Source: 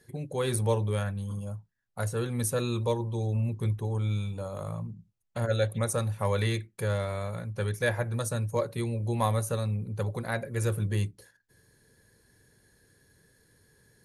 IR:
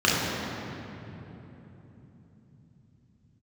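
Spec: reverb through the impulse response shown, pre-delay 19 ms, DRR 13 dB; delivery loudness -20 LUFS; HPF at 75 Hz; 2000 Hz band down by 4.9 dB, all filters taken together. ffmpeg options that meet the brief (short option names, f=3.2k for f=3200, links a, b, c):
-filter_complex "[0:a]highpass=75,equalizer=f=2k:t=o:g=-6.5,asplit=2[a][b];[1:a]atrim=start_sample=2205,adelay=19[c];[b][c]afir=irnorm=-1:irlink=0,volume=-32dB[d];[a][d]amix=inputs=2:normalize=0,volume=11dB"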